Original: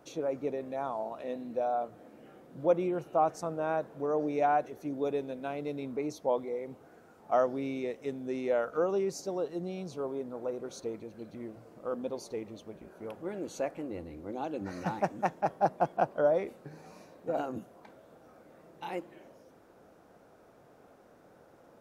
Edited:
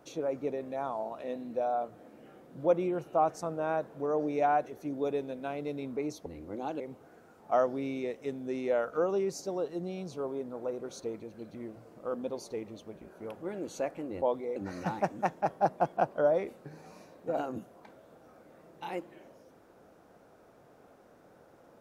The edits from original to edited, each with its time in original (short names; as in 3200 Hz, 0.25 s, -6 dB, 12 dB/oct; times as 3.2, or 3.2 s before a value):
6.26–6.6 swap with 14.02–14.56